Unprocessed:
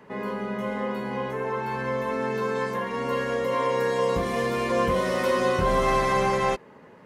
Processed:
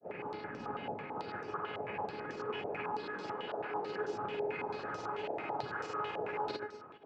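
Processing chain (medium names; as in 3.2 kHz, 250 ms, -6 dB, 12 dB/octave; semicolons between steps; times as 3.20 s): octave divider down 1 oct, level -3 dB; peaking EQ 360 Hz +3.5 dB 0.77 oct; reverse; compression 6:1, threshold -34 dBFS, peak gain reduction 15.5 dB; reverse; noise-vocoded speech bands 8; feedback comb 420 Hz, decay 0.63 s, mix 90%; granulator, pitch spread up and down by 0 st; on a send: echo whose repeats swap between lows and highs 102 ms, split 1.1 kHz, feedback 59%, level -12.5 dB; on the sum: step-sequenced low-pass 9.1 Hz 660–5900 Hz; trim +11.5 dB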